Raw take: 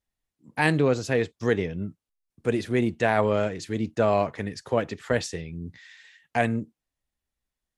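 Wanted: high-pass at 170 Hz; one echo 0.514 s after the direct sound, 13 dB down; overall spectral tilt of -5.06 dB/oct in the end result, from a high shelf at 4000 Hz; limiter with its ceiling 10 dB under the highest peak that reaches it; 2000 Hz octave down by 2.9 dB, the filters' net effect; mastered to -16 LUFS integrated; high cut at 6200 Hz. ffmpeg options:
-af "highpass=170,lowpass=6.2k,equalizer=f=2k:t=o:g=-5.5,highshelf=f=4k:g=8.5,alimiter=limit=-17dB:level=0:latency=1,aecho=1:1:514:0.224,volume=14dB"

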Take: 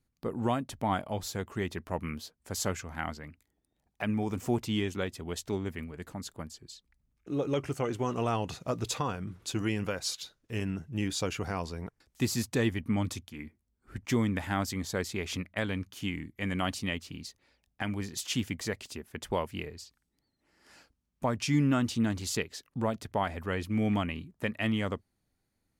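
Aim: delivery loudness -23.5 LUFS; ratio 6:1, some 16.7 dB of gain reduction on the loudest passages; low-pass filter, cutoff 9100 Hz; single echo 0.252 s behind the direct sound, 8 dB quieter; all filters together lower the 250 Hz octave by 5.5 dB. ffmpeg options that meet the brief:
-af "lowpass=9.1k,equalizer=f=250:t=o:g=-7,acompressor=threshold=-45dB:ratio=6,aecho=1:1:252:0.398,volume=24.5dB"

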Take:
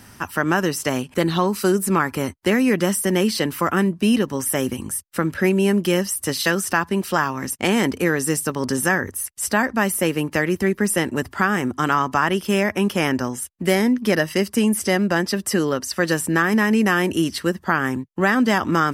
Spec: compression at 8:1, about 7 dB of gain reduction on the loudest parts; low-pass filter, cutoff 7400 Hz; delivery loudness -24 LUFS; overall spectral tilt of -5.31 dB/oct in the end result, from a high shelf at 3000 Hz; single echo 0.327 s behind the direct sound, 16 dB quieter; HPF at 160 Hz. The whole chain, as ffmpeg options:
-af "highpass=160,lowpass=7.4k,highshelf=f=3k:g=-8,acompressor=threshold=-22dB:ratio=8,aecho=1:1:327:0.158,volume=4dB"

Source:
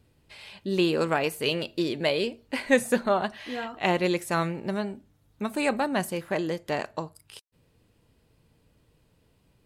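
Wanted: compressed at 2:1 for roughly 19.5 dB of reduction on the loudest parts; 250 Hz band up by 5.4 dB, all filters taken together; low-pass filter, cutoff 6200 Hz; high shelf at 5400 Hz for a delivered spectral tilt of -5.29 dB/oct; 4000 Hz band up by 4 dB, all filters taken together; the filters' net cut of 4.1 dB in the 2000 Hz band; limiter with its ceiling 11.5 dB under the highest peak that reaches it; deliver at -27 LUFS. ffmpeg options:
-af "lowpass=6.2k,equalizer=f=250:t=o:g=7.5,equalizer=f=2k:t=o:g=-8.5,equalizer=f=4k:t=o:g=6.5,highshelf=f=5.4k:g=6.5,acompressor=threshold=-50dB:ratio=2,volume=19.5dB,alimiter=limit=-16dB:level=0:latency=1"

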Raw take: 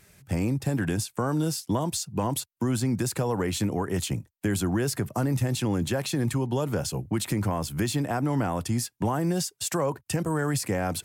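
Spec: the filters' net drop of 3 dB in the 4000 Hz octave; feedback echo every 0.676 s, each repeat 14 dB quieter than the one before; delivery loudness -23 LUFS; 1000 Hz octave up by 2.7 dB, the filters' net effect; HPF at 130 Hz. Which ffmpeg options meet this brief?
-af "highpass=130,equalizer=f=1k:t=o:g=3.5,equalizer=f=4k:t=o:g=-4,aecho=1:1:676|1352:0.2|0.0399,volume=5.5dB"

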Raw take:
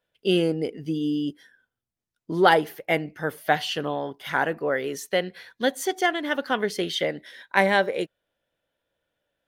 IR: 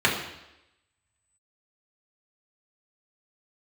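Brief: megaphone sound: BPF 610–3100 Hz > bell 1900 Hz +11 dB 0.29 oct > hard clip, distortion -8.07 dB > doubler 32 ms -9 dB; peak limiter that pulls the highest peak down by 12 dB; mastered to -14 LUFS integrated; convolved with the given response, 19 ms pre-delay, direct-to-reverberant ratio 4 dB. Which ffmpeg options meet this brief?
-filter_complex "[0:a]alimiter=limit=-15.5dB:level=0:latency=1,asplit=2[a][b];[1:a]atrim=start_sample=2205,adelay=19[c];[b][c]afir=irnorm=-1:irlink=0,volume=-21.5dB[d];[a][d]amix=inputs=2:normalize=0,highpass=610,lowpass=3.1k,equalizer=f=1.9k:t=o:w=0.29:g=11,asoftclip=type=hard:threshold=-24.5dB,asplit=2[e][f];[f]adelay=32,volume=-9dB[g];[e][g]amix=inputs=2:normalize=0,volume=16dB"

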